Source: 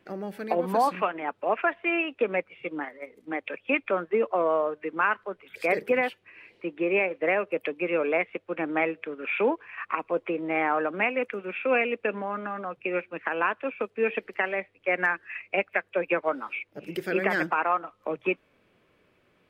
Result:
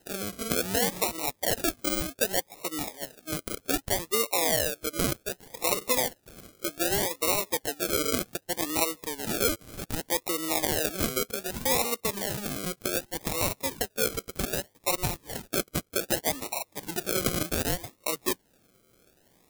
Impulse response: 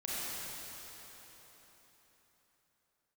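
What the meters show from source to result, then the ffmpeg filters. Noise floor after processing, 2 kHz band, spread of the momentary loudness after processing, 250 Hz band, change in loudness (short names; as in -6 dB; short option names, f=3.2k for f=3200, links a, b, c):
-67 dBFS, -7.0 dB, 9 LU, -1.5 dB, -0.5 dB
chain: -af "acrusher=samples=38:mix=1:aa=0.000001:lfo=1:lforange=22.8:lforate=0.65,acompressor=threshold=-35dB:ratio=1.5,crystalizer=i=3:c=0"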